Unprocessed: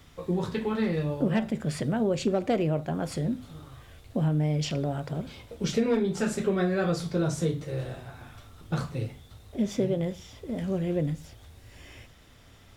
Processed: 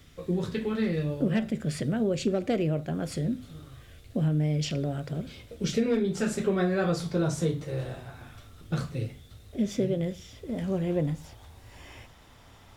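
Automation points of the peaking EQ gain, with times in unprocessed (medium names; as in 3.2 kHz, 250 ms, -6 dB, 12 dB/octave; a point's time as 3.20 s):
peaking EQ 910 Hz 0.72 oct
6.00 s -9.5 dB
6.55 s +1 dB
7.91 s +1 dB
8.77 s -8 dB
10.35 s -8 dB
10.60 s +0.5 dB
11.18 s +8 dB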